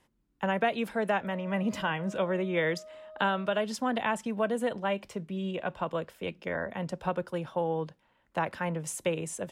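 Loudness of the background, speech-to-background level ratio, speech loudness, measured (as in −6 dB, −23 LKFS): −49.0 LKFS, 17.5 dB, −31.5 LKFS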